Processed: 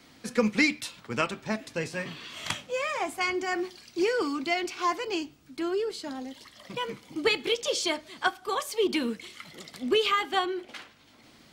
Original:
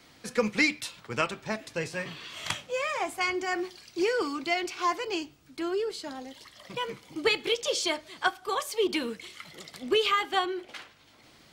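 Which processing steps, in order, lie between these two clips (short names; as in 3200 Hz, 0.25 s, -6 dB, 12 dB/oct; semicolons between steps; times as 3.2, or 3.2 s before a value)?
bell 240 Hz +6.5 dB 0.56 oct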